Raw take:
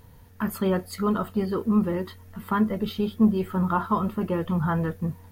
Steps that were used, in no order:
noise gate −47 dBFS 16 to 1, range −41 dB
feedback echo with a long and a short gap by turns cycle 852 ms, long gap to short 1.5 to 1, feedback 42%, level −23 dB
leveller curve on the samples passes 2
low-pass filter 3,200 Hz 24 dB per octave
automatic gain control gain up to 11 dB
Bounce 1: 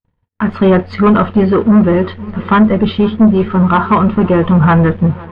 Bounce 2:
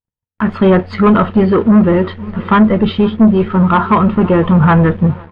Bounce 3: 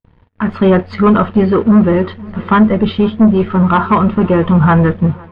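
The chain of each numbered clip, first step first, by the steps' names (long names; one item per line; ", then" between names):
noise gate, then automatic gain control, then feedback echo with a long and a short gap by turns, then leveller curve on the samples, then low-pass filter
feedback echo with a long and a short gap by turns, then automatic gain control, then leveller curve on the samples, then low-pass filter, then noise gate
leveller curve on the samples, then feedback echo with a long and a short gap by turns, then automatic gain control, then noise gate, then low-pass filter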